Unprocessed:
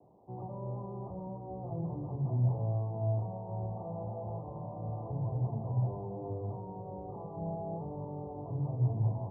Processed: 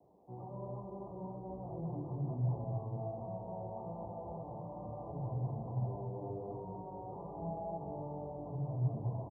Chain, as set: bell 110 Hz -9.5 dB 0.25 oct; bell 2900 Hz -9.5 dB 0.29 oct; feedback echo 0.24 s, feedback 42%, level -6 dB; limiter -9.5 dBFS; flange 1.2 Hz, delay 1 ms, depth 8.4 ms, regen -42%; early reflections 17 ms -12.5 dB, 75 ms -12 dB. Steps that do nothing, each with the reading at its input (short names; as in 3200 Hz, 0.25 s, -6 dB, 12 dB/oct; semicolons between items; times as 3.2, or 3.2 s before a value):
bell 2900 Hz: input band ends at 1000 Hz; limiter -9.5 dBFS: input peak -21.0 dBFS